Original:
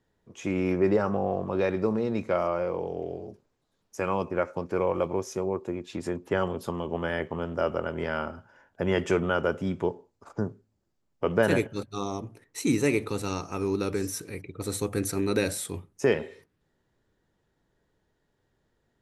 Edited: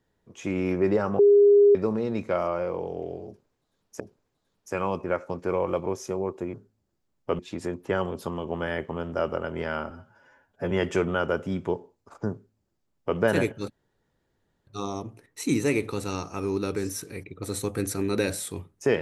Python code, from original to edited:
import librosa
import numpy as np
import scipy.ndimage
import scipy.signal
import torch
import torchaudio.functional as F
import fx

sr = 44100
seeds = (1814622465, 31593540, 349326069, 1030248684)

y = fx.edit(x, sr, fx.bleep(start_s=1.19, length_s=0.56, hz=407.0, db=-12.5),
    fx.repeat(start_s=3.27, length_s=0.73, count=2),
    fx.stretch_span(start_s=8.32, length_s=0.54, factor=1.5),
    fx.duplicate(start_s=10.48, length_s=0.85, to_s=5.81),
    fx.insert_room_tone(at_s=11.85, length_s=0.97), tone=tone)